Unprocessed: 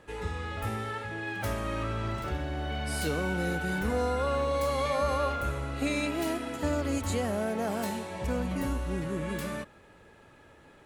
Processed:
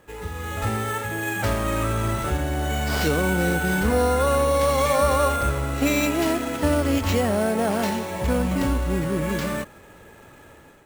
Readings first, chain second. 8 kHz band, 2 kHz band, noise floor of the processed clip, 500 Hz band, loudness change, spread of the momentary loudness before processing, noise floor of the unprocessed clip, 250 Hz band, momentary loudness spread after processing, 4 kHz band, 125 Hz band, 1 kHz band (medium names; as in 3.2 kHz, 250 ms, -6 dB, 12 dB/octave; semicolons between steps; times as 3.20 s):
+10.5 dB, +8.0 dB, -48 dBFS, +8.5 dB, +8.5 dB, 7 LU, -56 dBFS, +8.5 dB, 7 LU, +8.0 dB, +8.5 dB, +8.5 dB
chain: level rider gain up to 7.5 dB; sample-rate reducer 9.8 kHz, jitter 0%; trim +1 dB